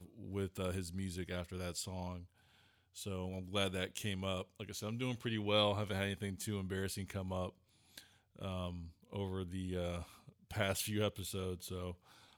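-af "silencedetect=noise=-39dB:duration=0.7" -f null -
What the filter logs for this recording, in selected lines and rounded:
silence_start: 2.16
silence_end: 2.98 | silence_duration: 0.83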